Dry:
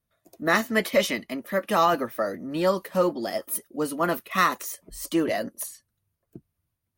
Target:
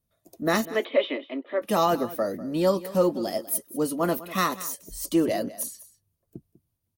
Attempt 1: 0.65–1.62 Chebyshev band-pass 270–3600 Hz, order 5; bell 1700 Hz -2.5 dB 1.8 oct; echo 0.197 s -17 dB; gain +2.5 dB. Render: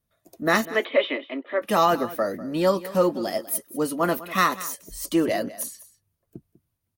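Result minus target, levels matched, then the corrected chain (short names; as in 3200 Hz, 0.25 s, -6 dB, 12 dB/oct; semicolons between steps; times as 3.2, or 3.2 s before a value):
2000 Hz band +4.0 dB
0.65–1.62 Chebyshev band-pass 270–3600 Hz, order 5; bell 1700 Hz -9 dB 1.8 oct; echo 0.197 s -17 dB; gain +2.5 dB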